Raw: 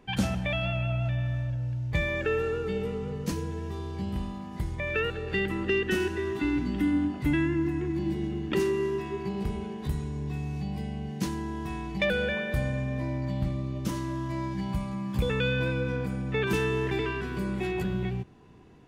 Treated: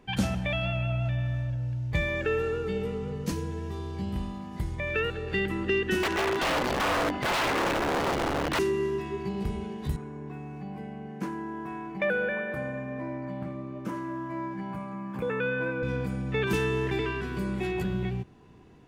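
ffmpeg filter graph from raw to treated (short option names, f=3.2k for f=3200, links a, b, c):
-filter_complex "[0:a]asettb=1/sr,asplit=3[a][b][c];[a]atrim=end=6.034[d];[b]atrim=start=6.03:end=8.59,asetpts=PTS-STARTPTS,afade=t=in:d=0.004:c=qsin,afade=t=out:st=2.556:d=0.004:c=qsin,asubboost=boost=6.5:cutoff=110,aeval=exprs='(mod(17.8*val(0)+1,2)-1)/17.8':c=same,asplit=2[e][f];[f]highpass=f=720:p=1,volume=19dB,asoftclip=type=tanh:threshold=-18.5dB[g];[e][g]amix=inputs=2:normalize=0,lowpass=f=2.6k:p=1,volume=-6dB[h];[c]atrim=start=8.586[i];[d][h]acrossfade=d=0.004:c1=hsin:c2=qsin[j];[j][i]acrossfade=d=0.004:c1=qsin:c2=hsin,asettb=1/sr,asplit=3[k][l][m];[k]atrim=end=9.964[n];[l]atrim=start=9.96:end=15.83,asetpts=PTS-STARTPTS,afade=t=in:d=0.004:c=qsin,afade=t=out:st=5.866:d=0.004:c=qsin,highpass=220,highshelf=f=2.6k:t=q:w=1.5:g=-12.5,bandreject=f=1.9k:w=9.4[o];[m]atrim=start=15.826[p];[n][o]acrossfade=d=0.004:c1=hsin:c2=qsin[q];[q][p]acrossfade=d=0.004:c1=qsin:c2=hsin"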